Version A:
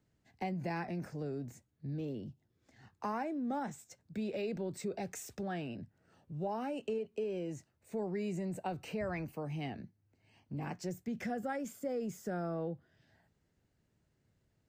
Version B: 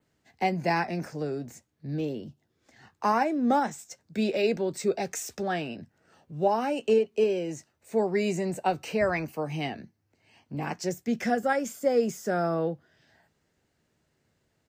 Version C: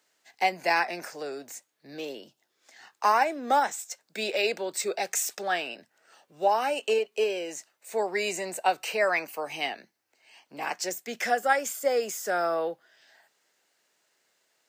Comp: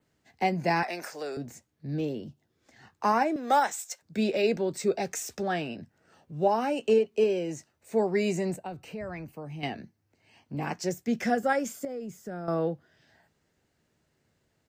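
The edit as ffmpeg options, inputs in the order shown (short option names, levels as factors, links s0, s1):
-filter_complex "[2:a]asplit=2[s0][s1];[0:a]asplit=2[s2][s3];[1:a]asplit=5[s4][s5][s6][s7][s8];[s4]atrim=end=0.832[s9];[s0]atrim=start=0.828:end=1.372[s10];[s5]atrim=start=1.368:end=3.362[s11];[s1]atrim=start=3.358:end=4.022[s12];[s6]atrim=start=4.018:end=8.562[s13];[s2]atrim=start=8.558:end=9.632[s14];[s7]atrim=start=9.628:end=11.852[s15];[s3]atrim=start=11.848:end=12.482[s16];[s8]atrim=start=12.478[s17];[s9][s10]acrossfade=d=0.004:c1=hsin:c2=hsin[s18];[s18][s11]acrossfade=d=0.004:c1=hsin:c2=hsin[s19];[s19][s12]acrossfade=d=0.004:c1=hsin:c2=hsin[s20];[s20][s13]acrossfade=d=0.004:c1=hsin:c2=hsin[s21];[s21][s14]acrossfade=d=0.004:c1=hsin:c2=hsin[s22];[s22][s15]acrossfade=d=0.004:c1=hsin:c2=hsin[s23];[s23][s16]acrossfade=d=0.004:c1=hsin:c2=hsin[s24];[s24][s17]acrossfade=d=0.004:c1=hsin:c2=hsin"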